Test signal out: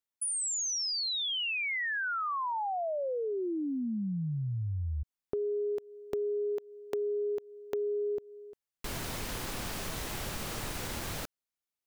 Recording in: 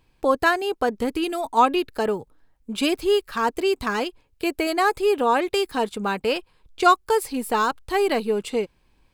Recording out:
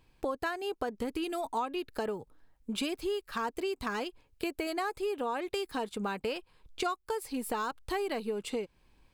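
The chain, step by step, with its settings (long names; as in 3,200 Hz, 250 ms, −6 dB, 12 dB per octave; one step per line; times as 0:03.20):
downward compressor 5 to 1, threshold −29 dBFS
level −2.5 dB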